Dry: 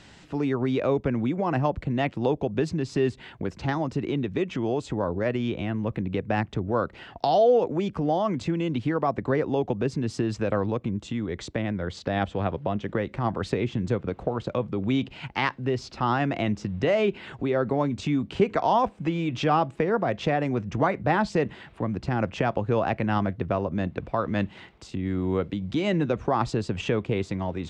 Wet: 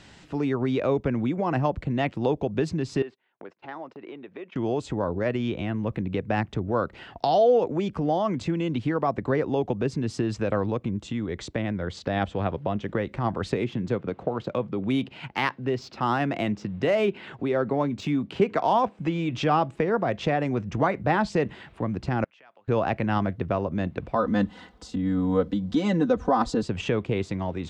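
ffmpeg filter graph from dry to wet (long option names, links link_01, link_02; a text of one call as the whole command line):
ffmpeg -i in.wav -filter_complex "[0:a]asettb=1/sr,asplit=3[link_01][link_02][link_03];[link_01]atrim=end=3.024[link_04];[link_02]atrim=start=3.02:end=4.56,asetpts=PTS-STARTPTS,afade=type=in:duration=0.004:curve=qsin,afade=type=out:start_time=1.536:duration=0.004:curve=qsin,agate=range=-26dB:threshold=-38dB:ratio=16:release=100:detection=peak,acompressor=threshold=-36dB:ratio=2:attack=3.2:release=140:knee=1:detection=peak,highpass=410,lowpass=2600[link_05];[link_03]atrim=start=4.556[link_06];[link_04][link_05]acrossfade=duration=0.004:curve1=hsin:curve2=qsin[link_07];[link_07][link_06]acrossfade=duration=0.004:curve1=qsin:curve2=hsin,asettb=1/sr,asplit=3[link_08][link_09][link_10];[link_08]atrim=end=13.564[link_11];[link_09]atrim=start=13.56:end=18.99,asetpts=PTS-STARTPTS,afade=type=in:duration=0.004:curve=qsin,afade=type=out:start_time=5.426:duration=0.004:curve=qsin,highpass=120,adynamicsmooth=sensitivity=6.5:basefreq=6400[link_12];[link_10]atrim=start=18.986[link_13];[link_11][link_12]acrossfade=duration=0.004:curve1=hsin:curve2=qsin[link_14];[link_14][link_13]acrossfade=duration=0.004:curve1=qsin:curve2=hsin,asettb=1/sr,asplit=3[link_15][link_16][link_17];[link_15]atrim=end=22.244[link_18];[link_16]atrim=start=22.24:end=22.68,asetpts=PTS-STARTPTS,afade=type=in:duration=0.004:curve=qsin,afade=type=out:start_time=0.436:duration=0.004:curve=qsin,aderivative,acompressor=threshold=-55dB:ratio=2:attack=3.2:release=140:knee=1:detection=peak,highpass=140,lowpass=2400[link_19];[link_17]atrim=start=22.676[link_20];[link_18][link_19]acrossfade=duration=0.004:curve1=hsin:curve2=qsin[link_21];[link_21][link_20]acrossfade=duration=0.004:curve1=qsin:curve2=hsin,asettb=1/sr,asplit=3[link_22][link_23][link_24];[link_22]atrim=end=24.154[link_25];[link_23]atrim=start=24.15:end=26.63,asetpts=PTS-STARTPTS,afade=type=in:duration=0.004:curve=qsin,afade=type=out:start_time=2.476:duration=0.004:curve=qsin,equalizer=frequency=2400:width_type=o:width=0.57:gain=-11,aecho=1:1:4:0.95,atrim=end_sample=109368[link_26];[link_24]atrim=start=26.626[link_27];[link_25][link_26]acrossfade=duration=0.004:curve1=hsin:curve2=qsin[link_28];[link_28][link_27]acrossfade=duration=0.004:curve1=qsin:curve2=hsin" out.wav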